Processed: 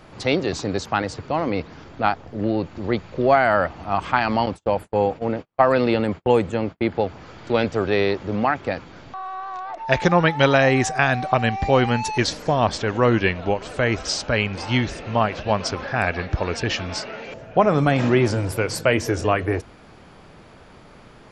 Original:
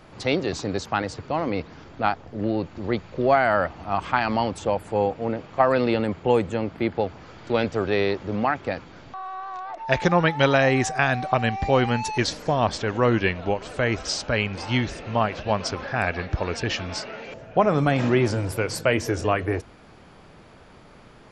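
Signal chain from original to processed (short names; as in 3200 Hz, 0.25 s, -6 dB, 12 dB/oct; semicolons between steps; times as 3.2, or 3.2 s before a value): 4.46–6.89 gate -30 dBFS, range -43 dB; gain +2.5 dB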